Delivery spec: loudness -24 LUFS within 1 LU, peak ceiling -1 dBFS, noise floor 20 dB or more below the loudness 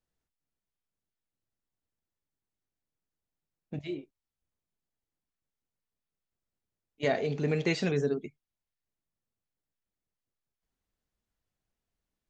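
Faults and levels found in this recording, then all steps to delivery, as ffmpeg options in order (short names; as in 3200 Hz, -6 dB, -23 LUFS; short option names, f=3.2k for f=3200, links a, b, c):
loudness -31.5 LUFS; peak -15.0 dBFS; loudness target -24.0 LUFS
-> -af "volume=7.5dB"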